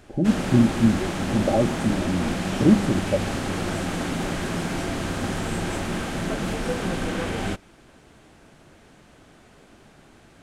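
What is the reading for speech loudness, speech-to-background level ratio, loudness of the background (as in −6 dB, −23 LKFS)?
−23.0 LKFS, 4.5 dB, −27.5 LKFS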